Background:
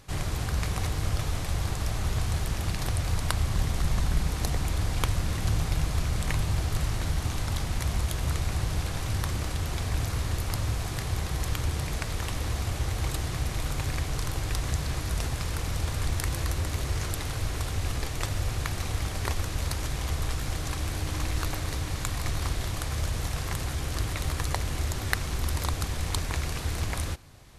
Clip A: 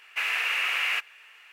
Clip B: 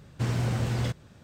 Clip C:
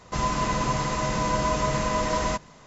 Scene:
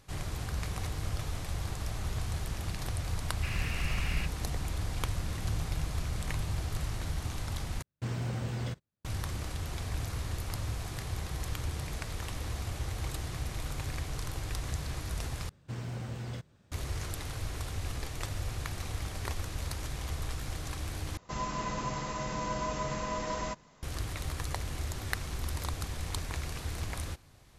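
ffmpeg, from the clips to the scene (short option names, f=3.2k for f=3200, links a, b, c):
-filter_complex "[2:a]asplit=2[a][b];[0:a]volume=-6.5dB[c];[1:a]aeval=exprs='(tanh(14.1*val(0)+0.6)-tanh(0.6))/14.1':c=same[d];[a]agate=range=-31dB:threshold=-44dB:ratio=16:release=100:detection=peak[e];[c]asplit=4[f][g][h][i];[f]atrim=end=7.824[j];[e]atrim=end=1.23,asetpts=PTS-STARTPTS,volume=-7dB[k];[g]atrim=start=9.046:end=15.494[l];[b]atrim=end=1.23,asetpts=PTS-STARTPTS,volume=-11dB[m];[h]atrim=start=16.716:end=21.174[n];[3:a]atrim=end=2.66,asetpts=PTS-STARTPTS,volume=-9.5dB[o];[i]atrim=start=23.826[p];[d]atrim=end=1.52,asetpts=PTS-STARTPTS,volume=-10dB,afade=t=in:d=0.004:c=hsin,afade=t=out:st=1.516:d=0.004:c=hsin,adelay=3260[q];[j][k]acrossfade=d=0.004:c1=hsin:c2=hsin[r];[r][l]acrossfade=d=0.004:c1=hsin:c2=hsin[s];[s][m]acrossfade=d=0.004:c1=hsin:c2=hsin[t];[t][n]acrossfade=d=0.004:c1=hsin:c2=hsin[u];[u][o]acrossfade=d=0.004:c1=hsin:c2=hsin[v];[v][p]acrossfade=d=0.004:c1=hsin:c2=hsin[w];[w][q]amix=inputs=2:normalize=0"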